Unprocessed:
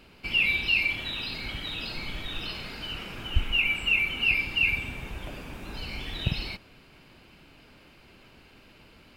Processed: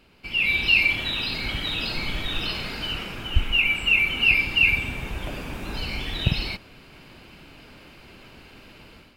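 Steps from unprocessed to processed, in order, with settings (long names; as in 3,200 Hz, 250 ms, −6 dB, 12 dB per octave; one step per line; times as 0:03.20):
automatic gain control gain up to 10.5 dB
level −3.5 dB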